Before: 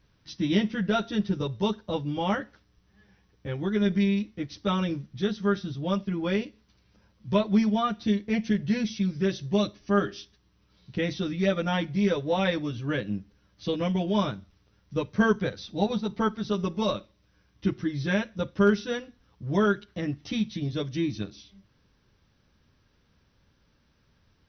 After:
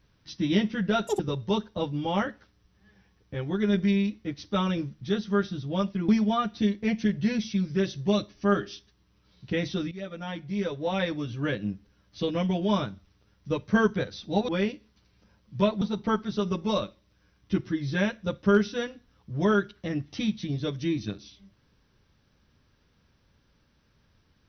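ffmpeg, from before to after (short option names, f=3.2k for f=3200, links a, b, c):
-filter_complex "[0:a]asplit=7[a][b][c][d][e][f][g];[a]atrim=end=1.074[h];[b]atrim=start=1.07:end=1.32,asetpts=PTS-STARTPTS,asetrate=88200,aresample=44100,atrim=end_sample=5512,asetpts=PTS-STARTPTS[i];[c]atrim=start=1.316:end=6.212[j];[d]atrim=start=7.538:end=11.37,asetpts=PTS-STARTPTS,afade=t=out:st=3.828:d=0.004:c=hsin:silence=0.16788[k];[e]atrim=start=11.37:end=15.942,asetpts=PTS-STARTPTS,afade=t=in:d=1.51:silence=0.16788[l];[f]atrim=start=6.208:end=7.542[m];[g]atrim=start=15.938[n];[h][i]acrossfade=d=0.004:c1=hsin:c2=hsin[o];[o][j]acrossfade=d=0.004:c1=hsin:c2=hsin[p];[k][l]concat=n=2:v=0:a=1[q];[p][q]acrossfade=d=0.004:c1=hsin:c2=hsin[r];[r][m]acrossfade=d=0.004:c1=hsin:c2=hsin[s];[s][n]acrossfade=d=0.004:c1=hsin:c2=hsin"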